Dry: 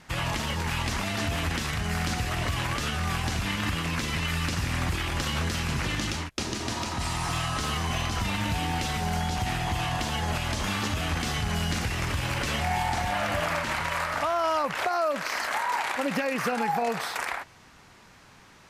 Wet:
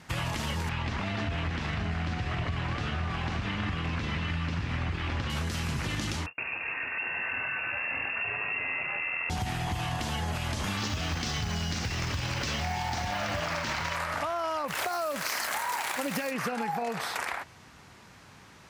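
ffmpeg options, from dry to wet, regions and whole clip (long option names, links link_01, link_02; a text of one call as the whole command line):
ffmpeg -i in.wav -filter_complex "[0:a]asettb=1/sr,asplit=3[link_01][link_02][link_03];[link_01]atrim=end=0.694[link_04];[link_02]atrim=start=0.69:end=5.3,asetpts=PTS-STARTPTS,afade=type=in:duration=0.004:curve=qsin,afade=type=out:start_time=4.606:duration=0.004:curve=qsin,lowpass=3400,aecho=1:1:613:0.473,atrim=end_sample=203301[link_05];[link_03]atrim=start=5.296[link_06];[link_04][link_05]acrossfade=duration=0.004:curve1=hsin:curve2=qsin[link_07];[link_07][link_06]acrossfade=duration=0.004:curve1=qsin:curve2=hsin,asettb=1/sr,asplit=3[link_08][link_09][link_10];[link_08]atrim=end=6.264[link_11];[link_09]atrim=start=6.26:end=9.3,asetpts=PTS-STARTPTS,afade=type=in:duration=0.004:curve=qsin,afade=type=out:start_time=3.036:duration=0.004:curve=qsin,asplit=2[link_12][link_13];[link_13]adelay=32,volume=-13dB[link_14];[link_12][link_14]amix=inputs=2:normalize=0,atrim=end_sample=134064,aeval=exprs='(tanh(14.1*val(0)+0.35)-tanh(0.35))/14.1':channel_layout=same,lowpass=frequency=2400:width_type=q:width=0.5098,lowpass=frequency=2400:width_type=q:width=0.6013,lowpass=frequency=2400:width_type=q:width=0.9,lowpass=frequency=2400:width_type=q:width=2.563,afreqshift=-2800[link_15];[link_10]atrim=start=9.296[link_16];[link_11][link_15]acrossfade=duration=0.004:curve1=hsin:curve2=qsin[link_17];[link_17][link_16]acrossfade=duration=0.004:curve1=qsin:curve2=hsin,asettb=1/sr,asplit=3[link_18][link_19][link_20];[link_18]atrim=end=10.774[link_21];[link_19]atrim=start=10.77:end=13.96,asetpts=PTS-STARTPTS,afade=type=in:duration=0.004:curve=qsin,afade=type=out:start_time=3.186:duration=0.004:curve=qsin,lowpass=frequency=5600:width_type=q:width=2.1,acrusher=bits=6:mode=log:mix=0:aa=0.000001[link_22];[link_20]atrim=start=13.956[link_23];[link_21][link_22]acrossfade=duration=0.004:curve1=hsin:curve2=qsin[link_24];[link_24][link_23]acrossfade=duration=0.004:curve1=qsin:curve2=hsin,asettb=1/sr,asplit=3[link_25][link_26][link_27];[link_25]atrim=end=14.684[link_28];[link_26]atrim=start=14.68:end=16.31,asetpts=PTS-STARTPTS,afade=type=in:duration=0.004:curve=qsin,afade=type=out:start_time=1.626:duration=0.004:curve=qsin,aemphasis=mode=production:type=50kf,acrusher=bits=5:mix=0:aa=0.5[link_29];[link_27]atrim=start=16.306[link_30];[link_28][link_29]acrossfade=duration=0.004:curve1=hsin:curve2=qsin[link_31];[link_31][link_30]acrossfade=duration=0.004:curve1=qsin:curve2=hsin,highpass=72,lowshelf=frequency=120:gain=7,acompressor=threshold=-28dB:ratio=6" out.wav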